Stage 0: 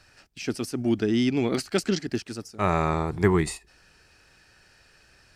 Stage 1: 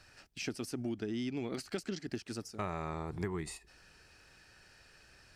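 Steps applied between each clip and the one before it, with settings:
downward compressor 6 to 1, threshold −32 dBFS, peak gain reduction 16 dB
level −3 dB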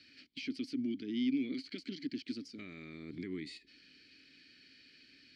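parametric band 4,400 Hz +14.5 dB 0.48 octaves
brickwall limiter −31.5 dBFS, peak gain reduction 8 dB
formant filter i
level +12 dB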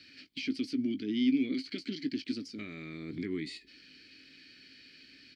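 double-tracking delay 19 ms −12 dB
level +5 dB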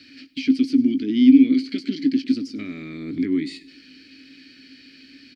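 parametric band 270 Hz +12 dB 0.31 octaves
repeating echo 99 ms, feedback 51%, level −20.5 dB
level +6 dB

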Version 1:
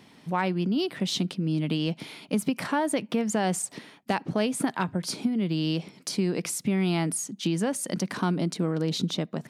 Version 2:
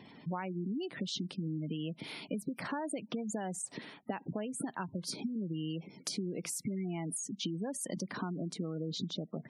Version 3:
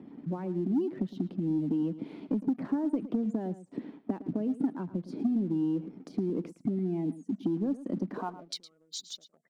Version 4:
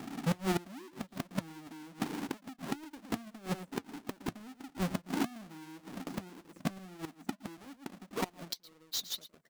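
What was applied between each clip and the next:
downward compressor 5 to 1, threshold −35 dBFS, peak gain reduction 13.5 dB; gate on every frequency bin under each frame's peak −20 dB strong
band-pass filter sweep 280 Hz → 7,800 Hz, 0:08.10–0:08.64; leveller curve on the samples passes 1; single-tap delay 111 ms −15 dB; level +8.5 dB
each half-wave held at its own peak; gate with flip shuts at −25 dBFS, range −24 dB; flanger 1.7 Hz, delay 2.1 ms, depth 3.5 ms, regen −67%; level +5.5 dB

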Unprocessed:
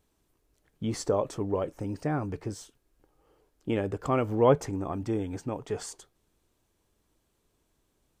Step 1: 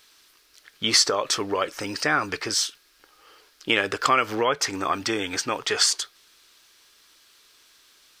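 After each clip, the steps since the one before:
bass and treble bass −14 dB, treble +11 dB
downward compressor 5 to 1, threshold −29 dBFS, peak gain reduction 11.5 dB
flat-topped bell 2,500 Hz +14.5 dB 2.5 octaves
level +7 dB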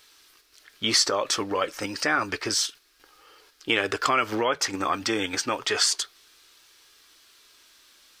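in parallel at 0 dB: output level in coarse steps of 15 dB
on the sum: flanger 0.3 Hz, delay 2.2 ms, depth 1.7 ms, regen −64%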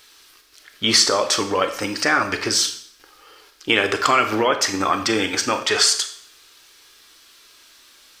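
convolution reverb RT60 0.55 s, pre-delay 28 ms, DRR 8 dB
level +5.5 dB

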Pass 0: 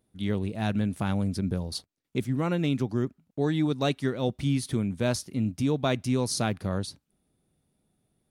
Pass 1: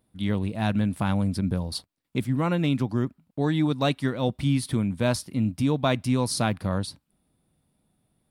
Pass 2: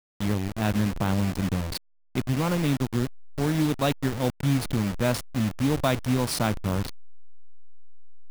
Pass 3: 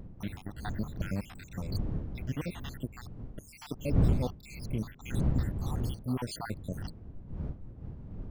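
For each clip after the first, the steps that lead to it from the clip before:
thirty-one-band graphic EQ 400 Hz −6 dB, 1,000 Hz +4 dB, 6,300 Hz −7 dB; level +3 dB
hold until the input has moved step −26 dBFS
time-frequency cells dropped at random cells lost 76%; wind on the microphone 130 Hz −27 dBFS; tape wow and flutter 27 cents; level −7.5 dB

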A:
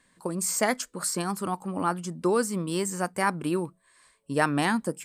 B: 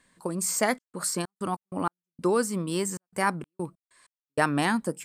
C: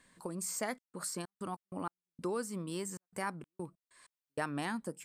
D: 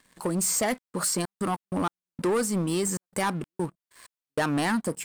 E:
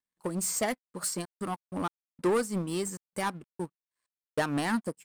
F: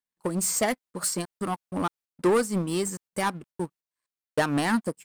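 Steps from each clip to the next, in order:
gate pattern "xxxxx.xx.x.x.." 96 BPM −60 dB
downward compressor 1.5 to 1, threshold −52 dBFS, peak gain reduction 12 dB; level −1 dB
leveller curve on the samples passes 3; level +3.5 dB
expander for the loud parts 2.5 to 1, over −45 dBFS
noise gate −54 dBFS, range −7 dB; level +4.5 dB

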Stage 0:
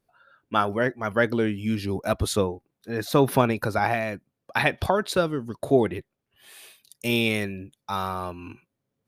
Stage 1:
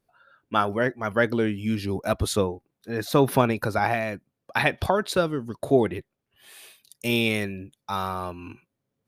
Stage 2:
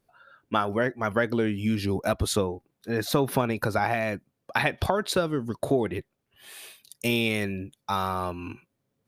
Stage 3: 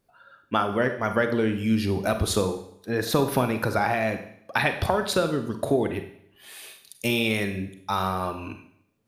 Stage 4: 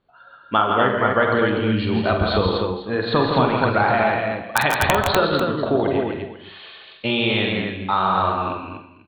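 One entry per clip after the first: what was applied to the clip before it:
no processing that can be heard
downward compressor 3 to 1, threshold −25 dBFS, peak gain reduction 9 dB; level +3 dB
four-comb reverb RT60 0.68 s, combs from 32 ms, DRR 7.5 dB; level +1 dB
Chebyshev low-pass with heavy ripple 4,400 Hz, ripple 6 dB; wrap-around overflow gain 10.5 dB; on a send: multi-tap delay 47/139/164/247/495 ms −9/−10/−5.5/−3.5/−15.5 dB; on the sum: level +7 dB

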